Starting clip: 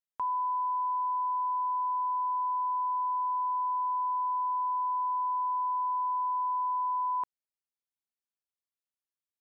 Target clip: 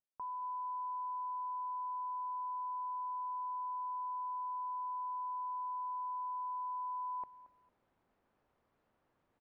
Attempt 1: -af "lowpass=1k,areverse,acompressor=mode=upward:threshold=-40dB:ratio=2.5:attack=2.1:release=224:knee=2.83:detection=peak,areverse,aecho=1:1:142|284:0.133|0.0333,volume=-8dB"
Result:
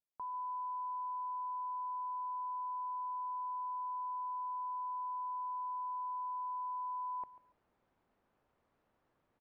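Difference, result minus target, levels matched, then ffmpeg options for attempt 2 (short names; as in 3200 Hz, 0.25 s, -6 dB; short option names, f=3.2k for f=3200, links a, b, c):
echo 84 ms early
-af "lowpass=1k,areverse,acompressor=mode=upward:threshold=-40dB:ratio=2.5:attack=2.1:release=224:knee=2.83:detection=peak,areverse,aecho=1:1:226|452:0.133|0.0333,volume=-8dB"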